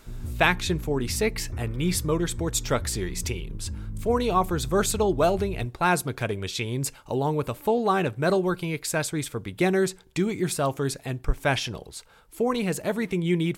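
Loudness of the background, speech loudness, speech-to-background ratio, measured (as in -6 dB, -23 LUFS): -37.0 LUFS, -26.5 LUFS, 10.5 dB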